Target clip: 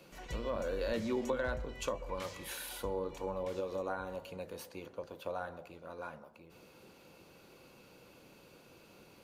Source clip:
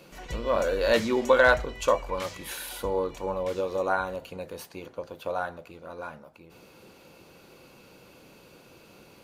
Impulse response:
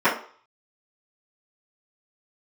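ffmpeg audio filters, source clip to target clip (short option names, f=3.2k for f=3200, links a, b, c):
-filter_complex "[0:a]acrossover=split=320[a][b];[b]acompressor=threshold=-30dB:ratio=6[c];[a][c]amix=inputs=2:normalize=0,asplit=2[d][e];[1:a]atrim=start_sample=2205,asetrate=22932,aresample=44100,adelay=125[f];[e][f]afir=irnorm=-1:irlink=0,volume=-41dB[g];[d][g]amix=inputs=2:normalize=0,volume=-6dB"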